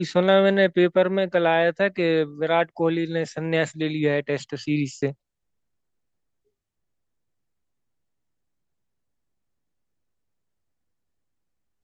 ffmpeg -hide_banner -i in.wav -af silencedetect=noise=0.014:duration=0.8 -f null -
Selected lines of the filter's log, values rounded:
silence_start: 5.12
silence_end: 11.84 | silence_duration: 6.71